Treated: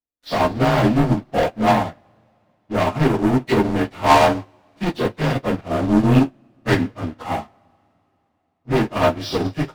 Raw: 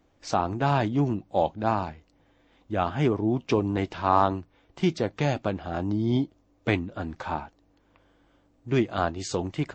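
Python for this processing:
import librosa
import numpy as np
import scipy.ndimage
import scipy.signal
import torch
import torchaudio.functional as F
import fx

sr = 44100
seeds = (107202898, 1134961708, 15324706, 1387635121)

y = fx.partial_stretch(x, sr, pct=91)
y = fx.leveller(y, sr, passes=5)
y = fx.rev_double_slope(y, sr, seeds[0], early_s=0.25, late_s=3.7, knee_db=-21, drr_db=2.5)
y = fx.upward_expand(y, sr, threshold_db=-26.0, expansion=2.5)
y = y * librosa.db_to_amplitude(1.0)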